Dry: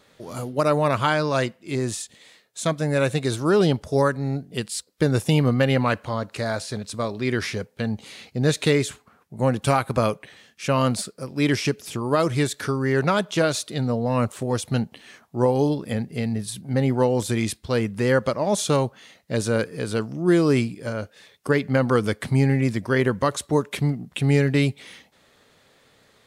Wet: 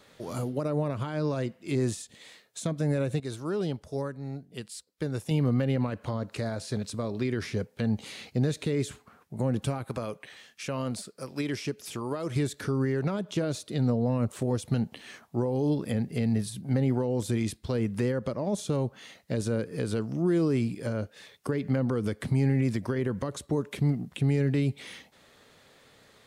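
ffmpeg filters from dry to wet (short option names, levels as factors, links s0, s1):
-filter_complex "[0:a]asettb=1/sr,asplit=3[s0][s1][s2];[s0]atrim=end=9.844[s3];[s1]atrim=start=9.84:end=12.36,asetpts=PTS-STARTPTS,afade=t=in:d=0.004:c=qsin,afade=t=out:st=2.516:d=0.004:c=qsin,lowshelf=f=420:g=-9.5[s4];[s2]atrim=start=12.356[s5];[s3][s4]acrossfade=d=0.004:c1=hsin:c2=qsin[s6];[s6][s5]acrossfade=d=0.004:c1=qsin:c2=hsin,asplit=3[s7][s8][s9];[s7]atrim=end=3.202[s10];[s8]atrim=start=3.198:end=5.312,asetpts=PTS-STARTPTS,volume=0.282[s11];[s9]atrim=start=5.308[s12];[s10][s11]acrossfade=d=0.004:c1=hsin:c2=hsin[s13];[s13][s12]acrossfade=d=0.004:c1=hsin:c2=hsin,alimiter=limit=0.141:level=0:latency=1:release=100,acrossover=split=500[s14][s15];[s15]acompressor=threshold=0.0126:ratio=6[s16];[s14][s16]amix=inputs=2:normalize=0"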